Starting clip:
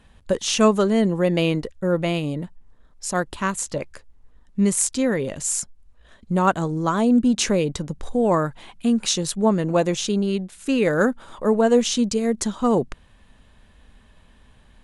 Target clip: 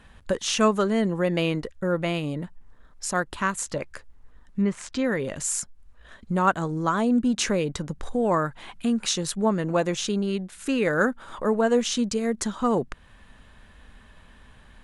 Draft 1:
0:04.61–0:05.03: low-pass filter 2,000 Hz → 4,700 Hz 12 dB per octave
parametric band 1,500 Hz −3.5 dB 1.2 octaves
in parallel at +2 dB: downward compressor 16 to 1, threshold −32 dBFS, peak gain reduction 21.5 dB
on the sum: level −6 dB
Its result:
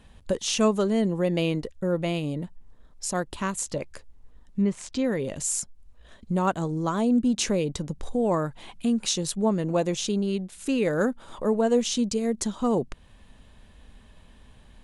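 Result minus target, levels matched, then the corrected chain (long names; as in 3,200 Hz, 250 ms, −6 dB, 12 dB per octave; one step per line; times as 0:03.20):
2,000 Hz band −6.0 dB
0:04.61–0:05.03: low-pass filter 2,000 Hz → 4,700 Hz 12 dB per octave
parametric band 1,500 Hz +5.5 dB 1.2 octaves
in parallel at +2 dB: downward compressor 16 to 1, threshold −32 dBFS, peak gain reduction 22.5 dB
on the sum: level −6 dB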